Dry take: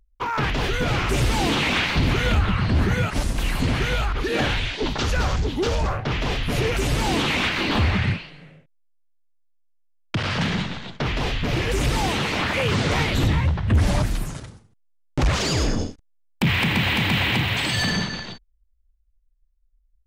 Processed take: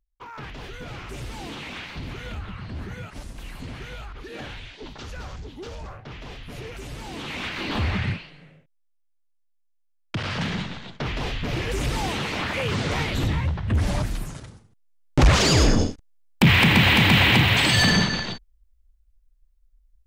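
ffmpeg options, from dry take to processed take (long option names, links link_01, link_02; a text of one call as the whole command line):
ffmpeg -i in.wav -af "volume=4.5dB,afade=type=in:start_time=7.12:duration=0.8:silence=0.298538,afade=type=in:start_time=14.39:duration=0.8:silence=0.375837" out.wav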